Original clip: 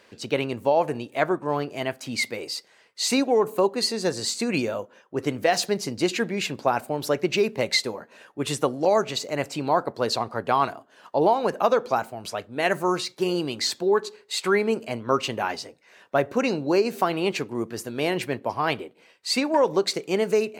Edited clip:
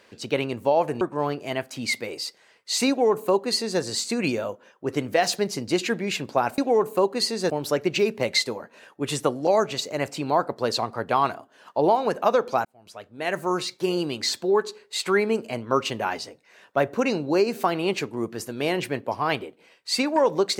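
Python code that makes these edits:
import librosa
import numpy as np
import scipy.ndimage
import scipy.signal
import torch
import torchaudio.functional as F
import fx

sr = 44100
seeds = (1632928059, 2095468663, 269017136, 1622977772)

y = fx.edit(x, sr, fx.cut(start_s=1.01, length_s=0.3),
    fx.duplicate(start_s=3.19, length_s=0.92, to_s=6.88),
    fx.fade_in_span(start_s=12.03, length_s=1.02), tone=tone)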